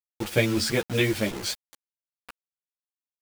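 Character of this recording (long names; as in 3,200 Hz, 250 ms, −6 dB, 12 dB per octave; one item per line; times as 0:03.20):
tremolo saw down 3.5 Hz, depth 45%
a quantiser's noise floor 6 bits, dither none
a shimmering, thickened sound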